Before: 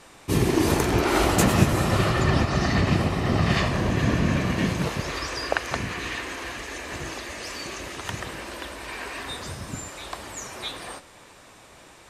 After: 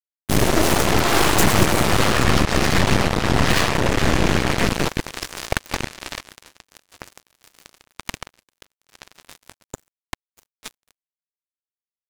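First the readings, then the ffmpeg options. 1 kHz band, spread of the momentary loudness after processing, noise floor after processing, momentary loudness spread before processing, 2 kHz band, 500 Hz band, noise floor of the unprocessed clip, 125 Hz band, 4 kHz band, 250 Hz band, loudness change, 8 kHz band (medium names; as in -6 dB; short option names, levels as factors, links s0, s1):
+5.0 dB, 18 LU, under -85 dBFS, 14 LU, +5.0 dB, +3.5 dB, -50 dBFS, +0.5 dB, +6.5 dB, +2.0 dB, +6.0 dB, +6.5 dB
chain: -af "agate=range=0.0224:threshold=0.0158:ratio=3:detection=peak,acrusher=bits=3:mix=0:aa=0.5,aeval=exprs='0.631*(cos(1*acos(clip(val(0)/0.631,-1,1)))-cos(1*PI/2))+0.2*(cos(8*acos(clip(val(0)/0.631,-1,1)))-cos(8*PI/2))':c=same,volume=0.891"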